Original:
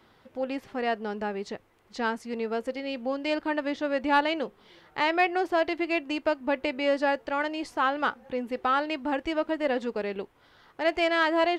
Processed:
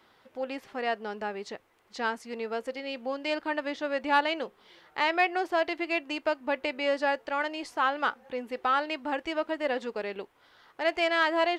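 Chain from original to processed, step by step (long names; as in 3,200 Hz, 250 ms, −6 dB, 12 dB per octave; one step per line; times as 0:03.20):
low-shelf EQ 290 Hz −11 dB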